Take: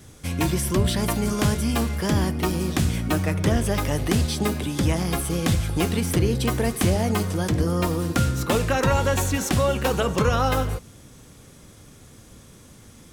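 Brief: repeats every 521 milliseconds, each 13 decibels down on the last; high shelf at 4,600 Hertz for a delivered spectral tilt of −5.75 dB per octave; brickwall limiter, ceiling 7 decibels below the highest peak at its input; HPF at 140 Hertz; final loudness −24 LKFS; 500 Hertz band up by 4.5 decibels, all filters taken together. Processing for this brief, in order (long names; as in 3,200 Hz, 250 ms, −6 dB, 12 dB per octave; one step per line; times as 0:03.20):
high-pass filter 140 Hz
parametric band 500 Hz +5.5 dB
high-shelf EQ 4,600 Hz −8.5 dB
brickwall limiter −14 dBFS
repeating echo 521 ms, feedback 22%, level −13 dB
level +0.5 dB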